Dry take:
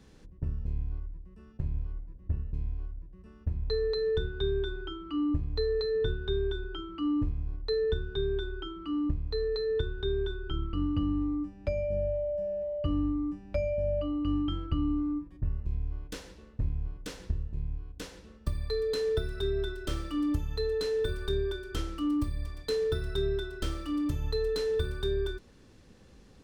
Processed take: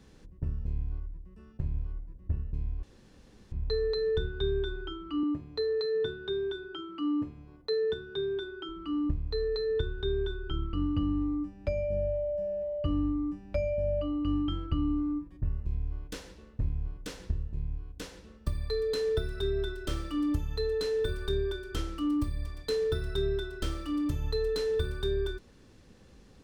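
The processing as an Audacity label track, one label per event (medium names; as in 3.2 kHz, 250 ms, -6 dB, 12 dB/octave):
2.830000	3.520000	room tone
5.230000	8.690000	high-pass 190 Hz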